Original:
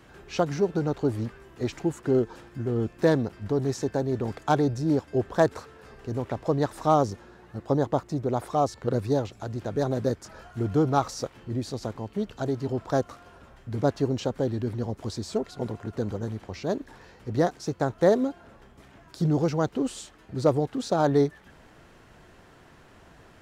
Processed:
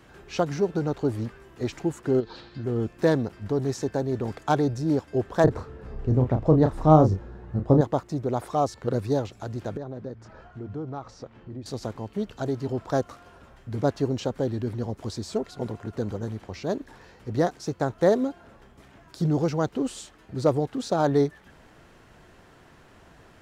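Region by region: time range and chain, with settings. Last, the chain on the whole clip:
0:02.20–0:02.64: low-pass with resonance 4,200 Hz, resonance Q 7.4 + downward compressor 3 to 1, threshold −30 dBFS
0:05.44–0:07.81: spectral tilt −3.5 dB per octave + double-tracking delay 32 ms −7 dB
0:09.77–0:11.66: hum removal 112.7 Hz, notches 2 + downward compressor 2 to 1, threshold −38 dBFS + head-to-tape spacing loss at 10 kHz 22 dB
whole clip: no processing

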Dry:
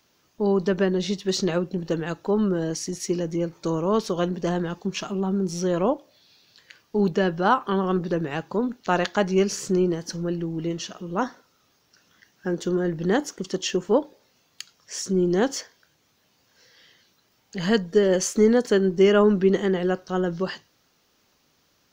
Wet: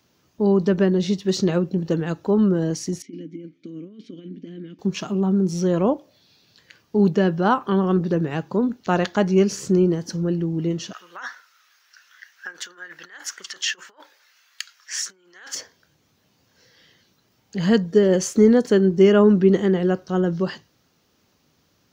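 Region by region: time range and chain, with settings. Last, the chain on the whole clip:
0:03.02–0:04.79: compressor whose output falls as the input rises −25 dBFS, ratio −0.5 + formant filter i
0:10.93–0:15.55: compressor whose output falls as the input rises −27 dBFS, ratio −0.5 + high-pass with resonance 1,600 Hz, resonance Q 2.5
whole clip: high-pass filter 60 Hz; low-shelf EQ 330 Hz +9 dB; level −1 dB

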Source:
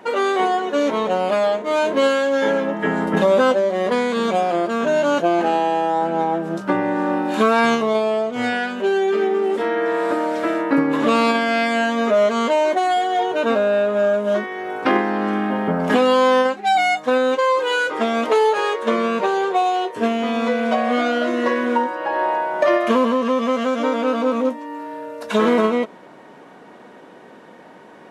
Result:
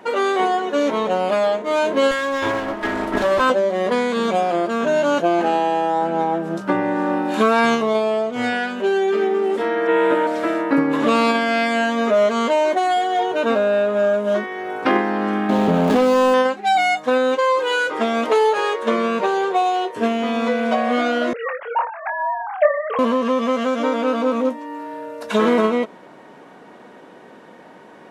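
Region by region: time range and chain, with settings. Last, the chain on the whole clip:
0:02.11–0:03.50: lower of the sound and its delayed copy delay 3.1 ms + low-shelf EQ 150 Hz −5.5 dB
0:09.87–0:10.27: high shelf with overshoot 3,900 Hz −6 dB, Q 3 + double-tracking delay 15 ms −2 dB
0:15.49–0:16.34: running median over 25 samples + envelope flattener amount 70%
0:21.33–0:22.99: three sine waves on the formant tracks + high-pass filter 760 Hz 6 dB per octave + double-tracking delay 24 ms −8 dB
whole clip: no processing

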